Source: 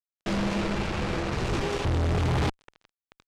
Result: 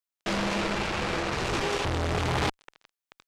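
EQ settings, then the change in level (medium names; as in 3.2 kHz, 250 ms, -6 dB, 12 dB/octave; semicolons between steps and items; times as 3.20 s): bass shelf 350 Hz -10 dB; +4.0 dB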